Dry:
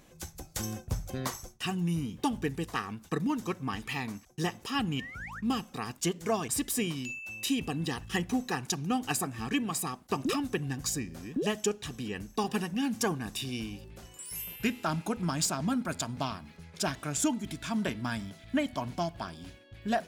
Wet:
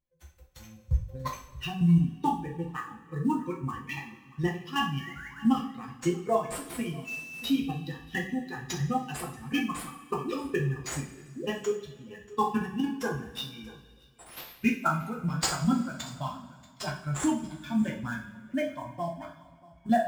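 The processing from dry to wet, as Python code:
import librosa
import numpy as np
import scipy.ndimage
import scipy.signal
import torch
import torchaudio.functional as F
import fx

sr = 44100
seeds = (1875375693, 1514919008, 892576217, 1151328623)

p1 = fx.bin_expand(x, sr, power=2.0)
p2 = fx.sample_hold(p1, sr, seeds[0], rate_hz=8600.0, jitter_pct=20)
p3 = p1 + (p2 * 10.0 ** (-5.0 / 20.0))
p4 = fx.level_steps(p3, sr, step_db=10)
p5 = p4 + fx.echo_single(p4, sr, ms=635, db=-21.0, dry=0)
p6 = fx.tremolo_random(p5, sr, seeds[1], hz=3.5, depth_pct=55)
p7 = fx.high_shelf(p6, sr, hz=4900.0, db=-7.0)
p8 = fx.rev_double_slope(p7, sr, seeds[2], early_s=0.42, late_s=2.1, knee_db=-18, drr_db=-2.0)
y = p8 * 10.0 ** (6.5 / 20.0)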